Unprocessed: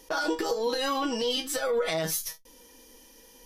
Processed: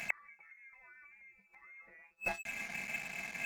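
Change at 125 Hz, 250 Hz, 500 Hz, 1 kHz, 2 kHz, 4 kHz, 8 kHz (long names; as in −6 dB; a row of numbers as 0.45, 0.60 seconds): −15.0, −23.0, −25.0, −17.5, −3.5, −23.0, −18.5 decibels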